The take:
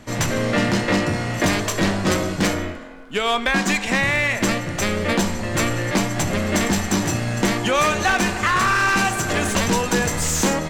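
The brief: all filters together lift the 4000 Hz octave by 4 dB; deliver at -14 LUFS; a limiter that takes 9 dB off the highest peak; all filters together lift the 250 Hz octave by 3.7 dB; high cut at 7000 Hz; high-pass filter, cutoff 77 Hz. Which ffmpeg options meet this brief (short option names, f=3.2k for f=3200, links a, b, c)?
-af "highpass=77,lowpass=7k,equalizer=f=250:t=o:g=5,equalizer=f=4k:t=o:g=5.5,volume=7.5dB,alimiter=limit=-4.5dB:level=0:latency=1"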